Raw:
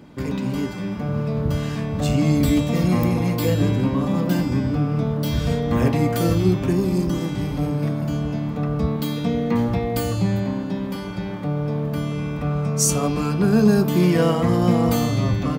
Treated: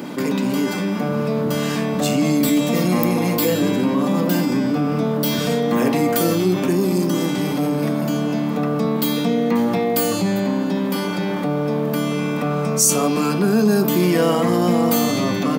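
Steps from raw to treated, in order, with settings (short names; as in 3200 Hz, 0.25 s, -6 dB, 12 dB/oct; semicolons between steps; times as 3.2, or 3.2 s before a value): HPF 190 Hz 24 dB/oct; high shelf 8800 Hz +9 dB; fast leveller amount 50%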